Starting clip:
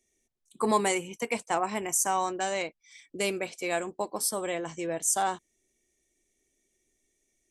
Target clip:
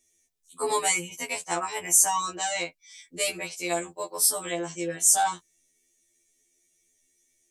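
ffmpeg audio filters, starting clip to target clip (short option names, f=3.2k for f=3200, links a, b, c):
-af "highshelf=f=2.4k:g=11,afftfilt=real='re*2*eq(mod(b,4),0)':imag='im*2*eq(mod(b,4),0)':win_size=2048:overlap=0.75"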